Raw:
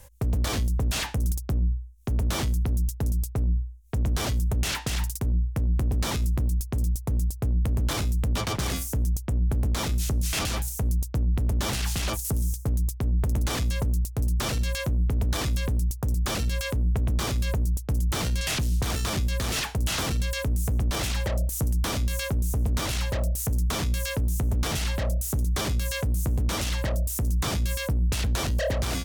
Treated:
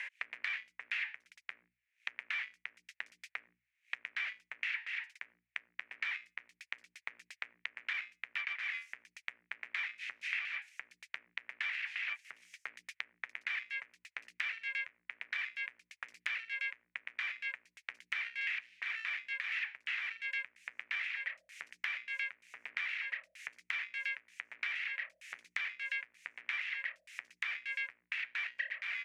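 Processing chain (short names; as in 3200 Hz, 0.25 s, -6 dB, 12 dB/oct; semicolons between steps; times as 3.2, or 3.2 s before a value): Butterworth band-pass 2100 Hz, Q 2.8; three-band squash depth 100%; gain +3.5 dB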